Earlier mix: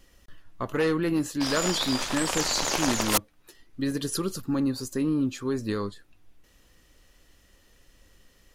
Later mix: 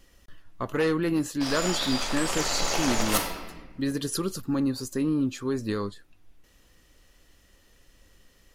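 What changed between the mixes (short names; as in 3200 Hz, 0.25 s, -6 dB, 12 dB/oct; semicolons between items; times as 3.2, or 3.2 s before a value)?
background -5.0 dB; reverb: on, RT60 1.3 s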